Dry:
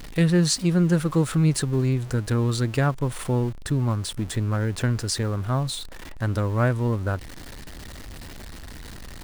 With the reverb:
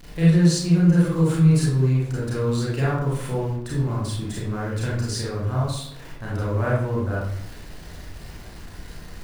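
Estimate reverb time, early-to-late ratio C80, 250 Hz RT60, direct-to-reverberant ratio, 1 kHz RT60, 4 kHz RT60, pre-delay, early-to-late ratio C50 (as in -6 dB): 0.75 s, 4.5 dB, 0.90 s, -7.0 dB, 0.70 s, 0.45 s, 29 ms, -0.5 dB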